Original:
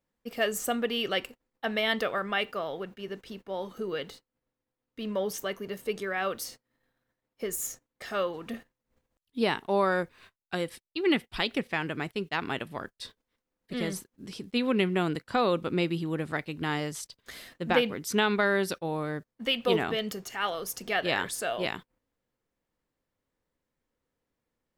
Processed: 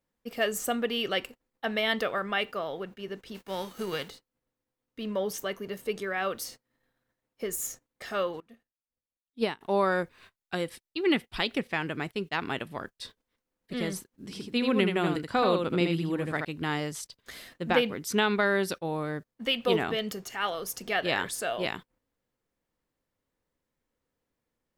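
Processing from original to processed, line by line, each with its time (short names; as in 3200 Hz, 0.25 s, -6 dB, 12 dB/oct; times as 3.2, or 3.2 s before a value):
3.34–4.08 spectral whitening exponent 0.6
8.4–9.61 upward expander 2.5:1, over -38 dBFS
14.12–16.45 echo 79 ms -4.5 dB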